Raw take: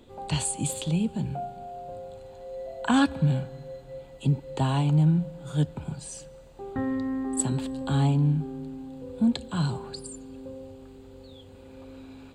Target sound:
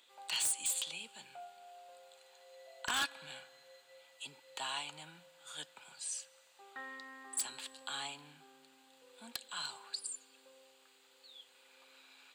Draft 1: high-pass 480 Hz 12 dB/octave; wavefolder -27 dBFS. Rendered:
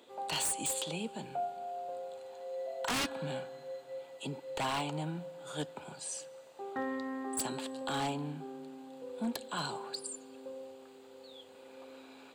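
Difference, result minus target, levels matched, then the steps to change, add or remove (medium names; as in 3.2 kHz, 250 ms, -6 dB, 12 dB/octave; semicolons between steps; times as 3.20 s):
500 Hz band +15.5 dB
change: high-pass 1.7 kHz 12 dB/octave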